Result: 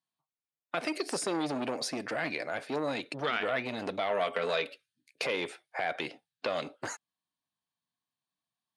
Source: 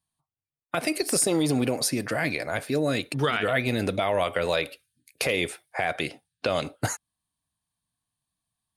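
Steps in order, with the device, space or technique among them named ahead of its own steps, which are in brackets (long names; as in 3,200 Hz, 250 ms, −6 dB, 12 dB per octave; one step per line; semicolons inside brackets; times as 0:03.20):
0:04.10–0:04.69: comb filter 4.5 ms, depth 50%
public-address speaker with an overloaded transformer (saturating transformer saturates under 1,000 Hz; band-pass filter 220–5,500 Hz)
level −4 dB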